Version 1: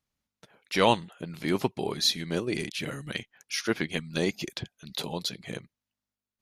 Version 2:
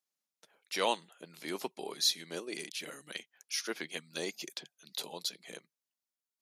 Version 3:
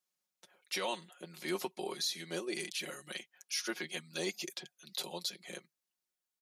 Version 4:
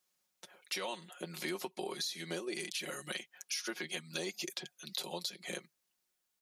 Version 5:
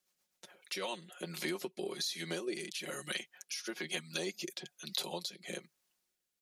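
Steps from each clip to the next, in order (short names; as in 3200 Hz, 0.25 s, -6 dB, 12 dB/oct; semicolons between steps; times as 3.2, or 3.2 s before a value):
elliptic high-pass 150 Hz; tone controls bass -15 dB, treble +8 dB; gain -7.5 dB
comb 5.5 ms, depth 72%; limiter -25 dBFS, peak gain reduction 10.5 dB
compressor, threshold -43 dBFS, peak gain reduction 12 dB; gain +7 dB
rotary speaker horn 8 Hz, later 1.1 Hz, at 0.27; gain +3 dB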